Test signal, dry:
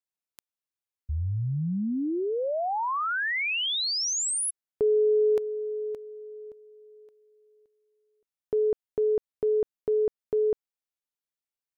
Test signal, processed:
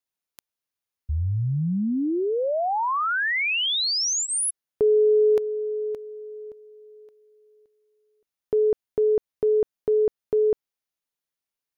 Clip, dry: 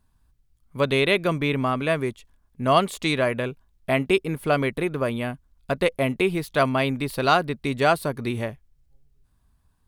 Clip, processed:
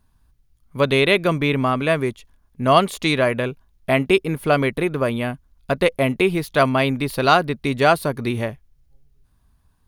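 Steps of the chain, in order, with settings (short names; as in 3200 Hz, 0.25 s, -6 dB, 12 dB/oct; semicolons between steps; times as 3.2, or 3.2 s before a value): notch 7800 Hz, Q 8.7; gain +4 dB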